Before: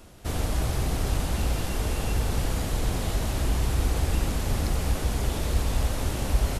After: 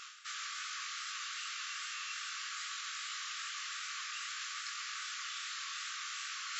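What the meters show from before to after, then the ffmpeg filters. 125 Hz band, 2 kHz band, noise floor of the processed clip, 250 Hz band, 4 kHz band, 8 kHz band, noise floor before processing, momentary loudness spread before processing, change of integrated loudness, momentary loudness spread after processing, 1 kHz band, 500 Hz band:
under -40 dB, -2.0 dB, -43 dBFS, under -40 dB, -2.0 dB, -5.5 dB, -31 dBFS, 3 LU, -11.5 dB, 0 LU, -9.0 dB, under -40 dB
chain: -af "afftfilt=real='re*between(b*sr/4096,1100,7600)':imag='im*between(b*sr/4096,1100,7600)':win_size=4096:overlap=0.75,flanger=delay=19:depth=5.8:speed=2.5,areverse,acompressor=threshold=-57dB:ratio=5,areverse,volume=15.5dB"

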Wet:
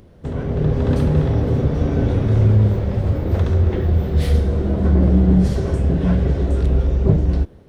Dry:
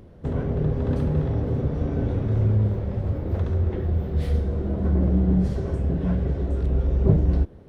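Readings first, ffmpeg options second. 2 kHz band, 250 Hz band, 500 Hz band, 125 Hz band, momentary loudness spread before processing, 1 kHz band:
+9.0 dB, +6.0 dB, +6.0 dB, +6.0 dB, 6 LU, +7.0 dB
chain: -af "highshelf=f=2.3k:g=7.5,dynaudnorm=f=370:g=3:m=7dB"

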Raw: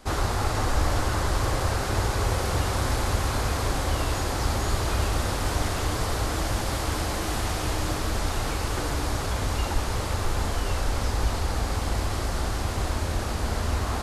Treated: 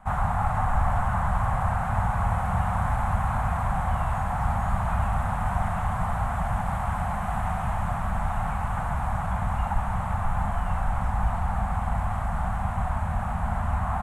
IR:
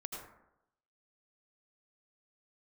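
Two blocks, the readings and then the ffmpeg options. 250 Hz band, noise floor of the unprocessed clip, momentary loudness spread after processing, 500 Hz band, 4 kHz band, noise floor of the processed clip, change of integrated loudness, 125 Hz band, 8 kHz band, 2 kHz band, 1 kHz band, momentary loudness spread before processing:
-2.0 dB, -29 dBFS, 3 LU, -5.5 dB, -18.5 dB, -29 dBFS, 0.0 dB, +0.5 dB, -16.0 dB, -2.5 dB, +4.0 dB, 3 LU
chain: -af "firequalizer=gain_entry='entry(100,0);entry(190,7);entry(330,-29);entry(730,6);entry(4800,-29);entry(8000,-13);entry(13000,-16)':delay=0.05:min_phase=1"

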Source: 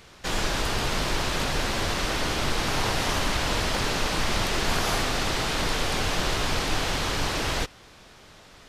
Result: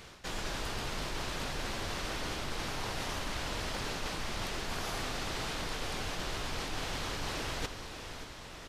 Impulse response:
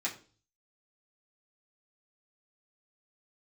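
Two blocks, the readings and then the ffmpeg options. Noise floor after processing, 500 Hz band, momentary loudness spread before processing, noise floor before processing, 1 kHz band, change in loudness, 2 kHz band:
-47 dBFS, -10.5 dB, 1 LU, -51 dBFS, -10.5 dB, -11.0 dB, -10.5 dB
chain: -af "aecho=1:1:592|1184|1776|2368:0.1|0.056|0.0314|0.0176,areverse,acompressor=threshold=-34dB:ratio=6,areverse"

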